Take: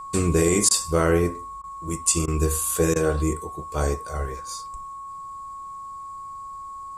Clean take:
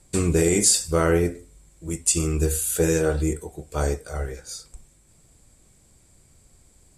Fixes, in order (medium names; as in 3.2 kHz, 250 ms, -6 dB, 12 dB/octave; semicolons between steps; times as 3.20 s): band-stop 1.1 kHz, Q 30; interpolate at 0.69/1.62/2.26/2.94 s, 17 ms